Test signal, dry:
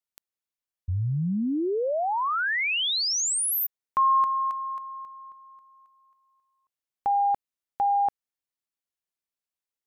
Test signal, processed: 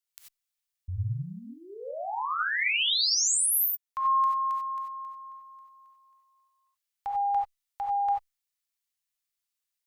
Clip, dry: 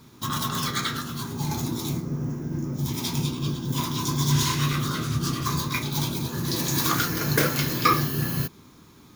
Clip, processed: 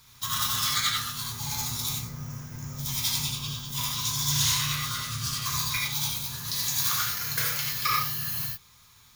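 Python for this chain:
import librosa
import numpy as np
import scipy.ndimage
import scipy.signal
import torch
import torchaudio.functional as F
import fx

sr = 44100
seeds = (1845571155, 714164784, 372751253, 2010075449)

y = fx.tone_stack(x, sr, knobs='10-0-10')
y = fx.rev_gated(y, sr, seeds[0], gate_ms=110, shape='rising', drr_db=0.0)
y = fx.rider(y, sr, range_db=4, speed_s=2.0)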